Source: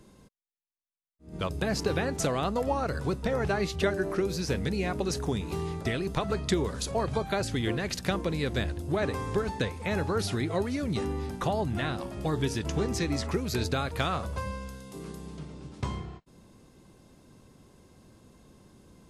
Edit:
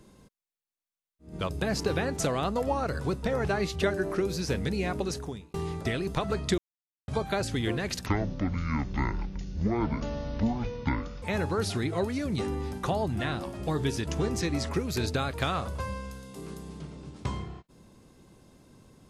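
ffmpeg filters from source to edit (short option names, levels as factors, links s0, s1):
-filter_complex "[0:a]asplit=6[s0][s1][s2][s3][s4][s5];[s0]atrim=end=5.54,asetpts=PTS-STARTPTS,afade=t=out:st=4.98:d=0.56[s6];[s1]atrim=start=5.54:end=6.58,asetpts=PTS-STARTPTS,afade=t=in:d=0.004:c=hsin,afade=t=out:st=1.036:d=0.004:c=hsin[s7];[s2]atrim=start=6.58:end=7.08,asetpts=PTS-STARTPTS,volume=0[s8];[s3]atrim=start=7.08:end=8.064,asetpts=PTS-STARTPTS,afade=t=in:d=0.004:c=hsin[s9];[s4]atrim=start=8.06:end=9.8,asetpts=PTS-STARTPTS,asetrate=24255,aresample=44100,atrim=end_sample=139516,asetpts=PTS-STARTPTS[s10];[s5]atrim=start=9.796[s11];[s6][s7][s8][s9]concat=n=4:v=0:a=1[s12];[s12][s10]acrossfade=d=0.004:c1=hsin:c2=hsin[s13];[s13][s11]acrossfade=d=0.004:c1=hsin:c2=hsin"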